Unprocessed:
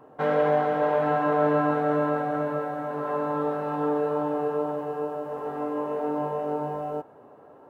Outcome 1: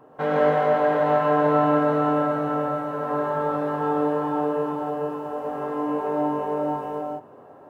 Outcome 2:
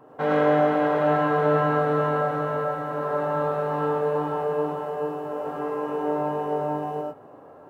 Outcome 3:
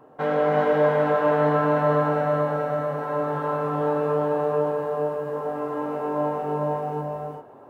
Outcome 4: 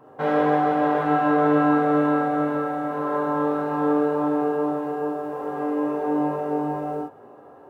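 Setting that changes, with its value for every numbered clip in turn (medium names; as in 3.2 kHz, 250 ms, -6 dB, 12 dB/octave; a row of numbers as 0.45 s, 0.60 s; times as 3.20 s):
gated-style reverb, gate: 200 ms, 130 ms, 420 ms, 90 ms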